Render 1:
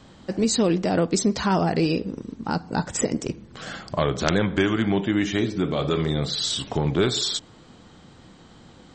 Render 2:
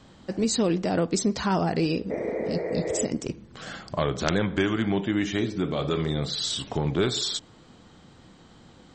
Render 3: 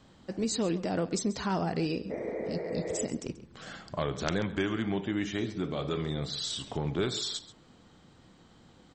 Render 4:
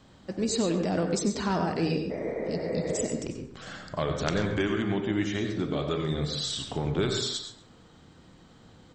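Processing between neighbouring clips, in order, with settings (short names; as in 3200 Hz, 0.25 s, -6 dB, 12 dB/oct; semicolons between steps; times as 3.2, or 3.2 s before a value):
spectral repair 2.13–3.03, 310–2500 Hz after; gain -3 dB
echo 0.135 s -16.5 dB; gain -6 dB
plate-style reverb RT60 0.52 s, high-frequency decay 0.55×, pre-delay 80 ms, DRR 5.5 dB; gain +2 dB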